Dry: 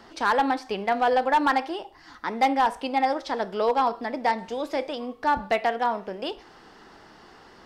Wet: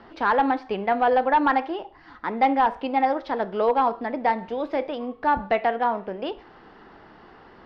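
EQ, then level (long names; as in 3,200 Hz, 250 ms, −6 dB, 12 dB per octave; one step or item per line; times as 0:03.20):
high-frequency loss of the air 330 metres
+3.0 dB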